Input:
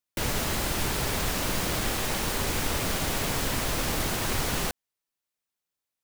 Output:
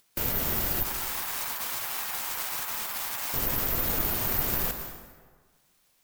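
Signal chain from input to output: tracing distortion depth 0.27 ms; upward compressor, threshold -51 dBFS; spectral gate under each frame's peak -30 dB strong; 0.83–3.34 s: Chebyshev high-pass 860 Hz, order 3; careless resampling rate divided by 3×, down none, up zero stuff; plate-style reverb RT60 1.5 s, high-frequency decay 0.65×, pre-delay 105 ms, DRR 6.5 dB; trim -4.5 dB

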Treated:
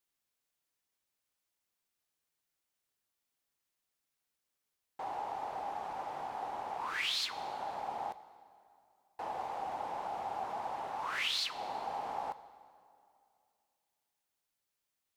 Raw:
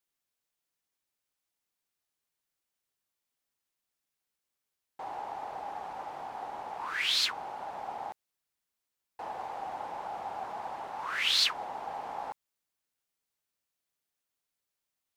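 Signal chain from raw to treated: dynamic bell 1.6 kHz, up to -4 dB, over -47 dBFS, Q 2; compression 10:1, threshold -31 dBFS, peak gain reduction 10 dB; plate-style reverb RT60 2.5 s, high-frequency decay 0.75×, DRR 13.5 dB

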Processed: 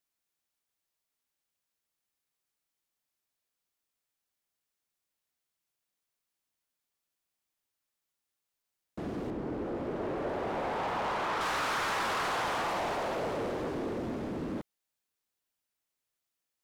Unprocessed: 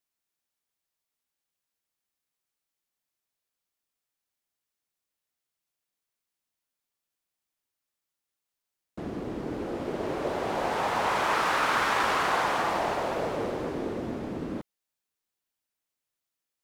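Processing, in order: 9.30–11.41 s: treble shelf 2.7 kHz -11.5 dB; saturation -28.5 dBFS, distortion -9 dB

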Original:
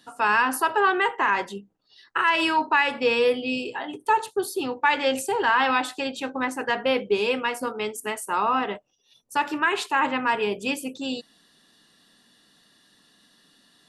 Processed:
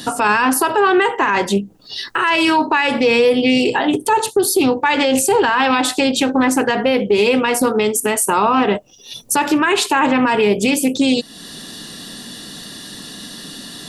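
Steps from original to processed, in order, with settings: peaking EQ 1.4 kHz -8 dB 2.9 oct; compression 2:1, threshold -49 dBFS, peak gain reduction 15.5 dB; loudness maximiser +35.5 dB; loudspeaker Doppler distortion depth 0.12 ms; trim -5.5 dB

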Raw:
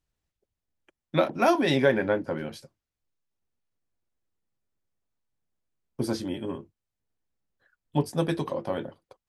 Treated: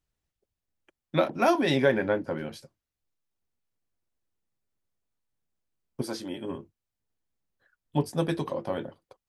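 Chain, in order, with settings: 6.01–6.49 s: high-pass 690 Hz -> 160 Hz 6 dB/octave; trim -1 dB

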